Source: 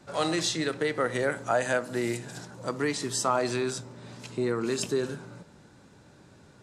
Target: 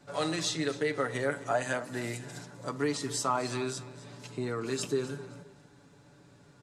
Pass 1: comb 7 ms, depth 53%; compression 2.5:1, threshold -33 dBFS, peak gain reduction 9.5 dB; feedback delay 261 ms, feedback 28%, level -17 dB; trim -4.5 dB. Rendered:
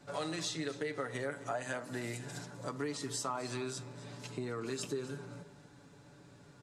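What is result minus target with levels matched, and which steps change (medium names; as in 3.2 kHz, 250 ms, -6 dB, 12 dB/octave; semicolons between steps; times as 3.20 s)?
compression: peak gain reduction +9.5 dB
remove: compression 2.5:1, threshold -33 dBFS, peak gain reduction 9.5 dB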